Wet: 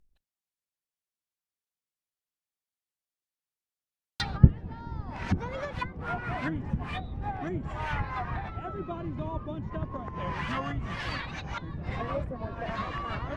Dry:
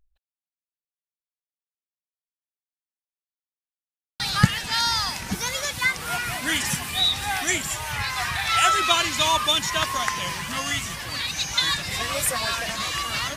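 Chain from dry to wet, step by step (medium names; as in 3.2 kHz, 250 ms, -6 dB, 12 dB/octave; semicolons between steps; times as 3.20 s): octave divider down 1 oct, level -2 dB; low-pass that closes with the level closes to 360 Hz, closed at -21 dBFS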